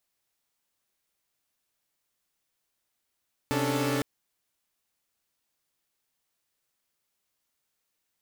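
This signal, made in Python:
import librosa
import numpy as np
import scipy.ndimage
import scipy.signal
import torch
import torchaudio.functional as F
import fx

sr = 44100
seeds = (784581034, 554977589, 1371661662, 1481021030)

y = fx.chord(sr, length_s=0.51, notes=(48, 61, 62, 69), wave='saw', level_db=-28.5)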